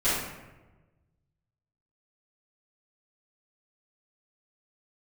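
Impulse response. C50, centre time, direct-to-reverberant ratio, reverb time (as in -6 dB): -1.0 dB, 74 ms, -15.0 dB, 1.2 s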